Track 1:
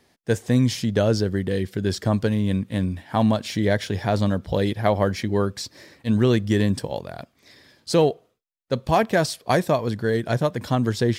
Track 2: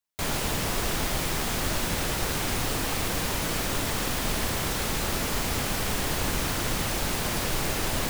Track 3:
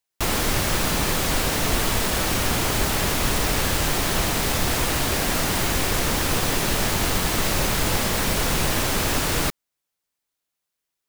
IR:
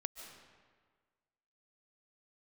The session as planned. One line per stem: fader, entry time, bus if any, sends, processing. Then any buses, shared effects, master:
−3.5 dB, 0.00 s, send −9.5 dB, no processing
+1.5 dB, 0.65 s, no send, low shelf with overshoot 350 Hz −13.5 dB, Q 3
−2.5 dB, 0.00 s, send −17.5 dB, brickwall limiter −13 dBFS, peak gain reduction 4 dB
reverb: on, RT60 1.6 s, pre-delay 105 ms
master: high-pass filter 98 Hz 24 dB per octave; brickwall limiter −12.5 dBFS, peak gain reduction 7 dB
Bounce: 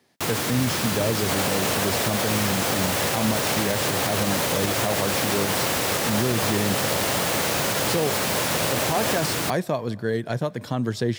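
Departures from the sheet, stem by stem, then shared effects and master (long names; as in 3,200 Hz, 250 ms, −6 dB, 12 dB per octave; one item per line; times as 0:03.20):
stem 2: entry 0.65 s → 1.10 s
stem 3: missing brickwall limiter −13 dBFS, peak gain reduction 4 dB
reverb return −7.5 dB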